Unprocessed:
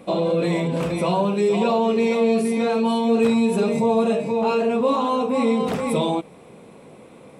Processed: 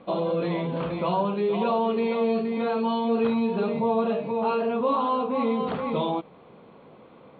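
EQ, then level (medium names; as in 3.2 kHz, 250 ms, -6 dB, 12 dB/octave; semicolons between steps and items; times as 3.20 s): rippled Chebyshev low-pass 4.5 kHz, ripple 6 dB; distance through air 150 m; 0.0 dB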